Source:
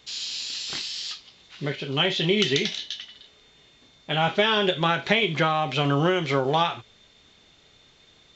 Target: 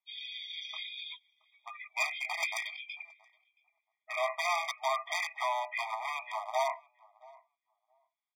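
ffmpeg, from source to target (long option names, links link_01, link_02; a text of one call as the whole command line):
ffmpeg -i in.wav -filter_complex "[0:a]afftdn=noise_reduction=29:noise_floor=-34,lowpass=5100,asetrate=35002,aresample=44100,atempo=1.25992,aeval=exprs='0.126*(abs(mod(val(0)/0.126+3,4)-2)-1)':channel_layout=same,asplit=2[link_01][link_02];[link_02]adelay=674,lowpass=frequency=1200:poles=1,volume=-22dB,asplit=2[link_03][link_04];[link_04]adelay=674,lowpass=frequency=1200:poles=1,volume=0.15[link_05];[link_03][link_05]amix=inputs=2:normalize=0[link_06];[link_01][link_06]amix=inputs=2:normalize=0,afftfilt=real='re*eq(mod(floor(b*sr/1024/630),2),1)':imag='im*eq(mod(floor(b*sr/1024/630),2),1)':win_size=1024:overlap=0.75,volume=-3dB" out.wav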